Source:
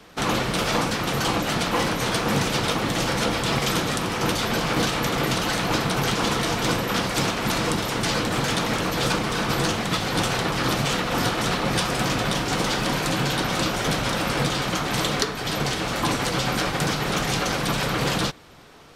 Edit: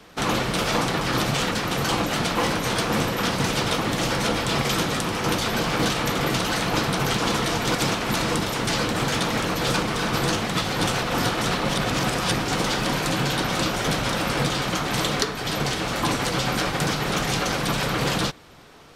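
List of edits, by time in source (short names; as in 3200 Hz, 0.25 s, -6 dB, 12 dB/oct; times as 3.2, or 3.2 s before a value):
6.72–7.11 move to 2.37
10.39–11.03 move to 0.88
11.69–12.4 reverse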